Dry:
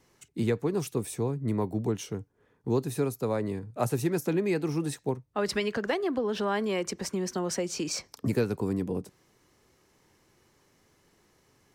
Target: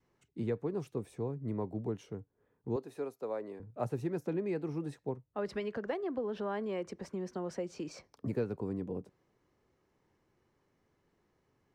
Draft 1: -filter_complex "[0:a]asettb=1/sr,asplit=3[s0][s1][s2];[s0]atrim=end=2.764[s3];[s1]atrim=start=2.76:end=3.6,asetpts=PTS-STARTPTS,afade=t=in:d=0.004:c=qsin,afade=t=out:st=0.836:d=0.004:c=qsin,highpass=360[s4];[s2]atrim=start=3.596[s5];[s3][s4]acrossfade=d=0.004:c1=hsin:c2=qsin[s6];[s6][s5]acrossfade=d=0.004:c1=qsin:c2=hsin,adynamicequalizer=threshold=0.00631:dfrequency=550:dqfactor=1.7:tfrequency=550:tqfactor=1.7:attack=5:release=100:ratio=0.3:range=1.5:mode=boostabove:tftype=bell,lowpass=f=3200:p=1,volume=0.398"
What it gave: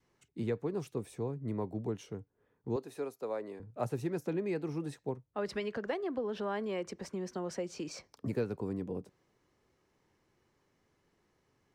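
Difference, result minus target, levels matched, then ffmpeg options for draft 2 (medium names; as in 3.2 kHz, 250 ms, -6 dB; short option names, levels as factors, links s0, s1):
4 kHz band +4.5 dB
-filter_complex "[0:a]asettb=1/sr,asplit=3[s0][s1][s2];[s0]atrim=end=2.764[s3];[s1]atrim=start=2.76:end=3.6,asetpts=PTS-STARTPTS,afade=t=in:d=0.004:c=qsin,afade=t=out:st=0.836:d=0.004:c=qsin,highpass=360[s4];[s2]atrim=start=3.596[s5];[s3][s4]acrossfade=d=0.004:c1=hsin:c2=qsin[s6];[s6][s5]acrossfade=d=0.004:c1=qsin:c2=hsin,adynamicequalizer=threshold=0.00631:dfrequency=550:dqfactor=1.7:tfrequency=550:tqfactor=1.7:attack=5:release=100:ratio=0.3:range=1.5:mode=boostabove:tftype=bell,lowpass=f=1500:p=1,volume=0.398"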